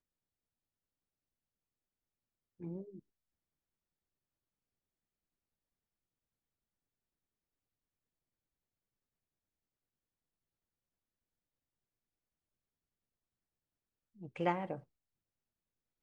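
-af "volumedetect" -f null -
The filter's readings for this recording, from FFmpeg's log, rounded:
mean_volume: -50.8 dB
max_volume: -18.8 dB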